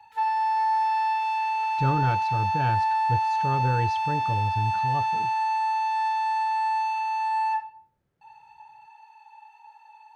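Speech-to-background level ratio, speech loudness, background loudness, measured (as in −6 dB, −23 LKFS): −4.5 dB, −30.0 LKFS, −25.5 LKFS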